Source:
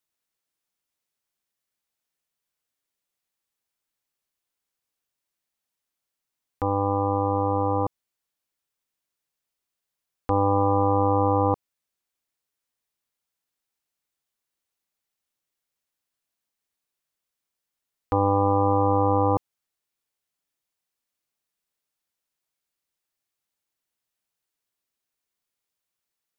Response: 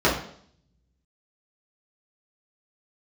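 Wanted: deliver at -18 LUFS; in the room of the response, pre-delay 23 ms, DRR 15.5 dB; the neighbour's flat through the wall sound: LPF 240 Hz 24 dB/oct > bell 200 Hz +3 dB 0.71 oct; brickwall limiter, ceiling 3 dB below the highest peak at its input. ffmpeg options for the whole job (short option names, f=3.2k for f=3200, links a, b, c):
-filter_complex "[0:a]alimiter=limit=-14.5dB:level=0:latency=1,asplit=2[a][b];[1:a]atrim=start_sample=2205,adelay=23[c];[b][c]afir=irnorm=-1:irlink=0,volume=-34.5dB[d];[a][d]amix=inputs=2:normalize=0,lowpass=f=240:w=0.5412,lowpass=f=240:w=1.3066,equalizer=f=200:t=o:w=0.71:g=3,volume=13.5dB"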